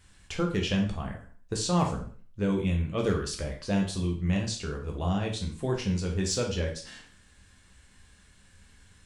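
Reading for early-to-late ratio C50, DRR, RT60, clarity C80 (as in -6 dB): 7.5 dB, 0.5 dB, 0.45 s, 12.5 dB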